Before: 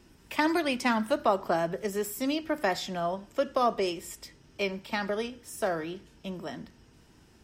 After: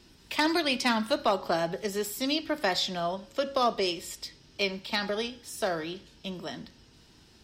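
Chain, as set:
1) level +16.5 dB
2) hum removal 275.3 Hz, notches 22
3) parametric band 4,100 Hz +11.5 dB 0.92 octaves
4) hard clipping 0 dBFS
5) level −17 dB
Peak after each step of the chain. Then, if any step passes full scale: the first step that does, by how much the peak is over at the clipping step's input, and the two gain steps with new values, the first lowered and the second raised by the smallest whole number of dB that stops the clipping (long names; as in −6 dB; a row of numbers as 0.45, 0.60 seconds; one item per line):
+4.0, +4.0, +8.0, 0.0, −17.0 dBFS
step 1, 8.0 dB
step 1 +8.5 dB, step 5 −9 dB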